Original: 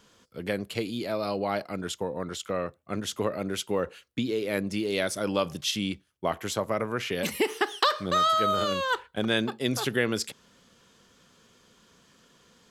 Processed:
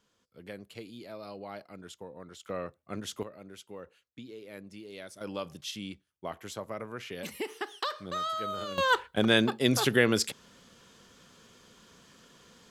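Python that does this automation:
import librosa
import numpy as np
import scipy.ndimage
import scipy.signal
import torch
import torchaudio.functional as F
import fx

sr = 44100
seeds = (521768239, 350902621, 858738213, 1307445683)

y = fx.gain(x, sr, db=fx.steps((0.0, -13.5), (2.46, -6.0), (3.23, -17.0), (5.21, -10.0), (8.78, 2.5)))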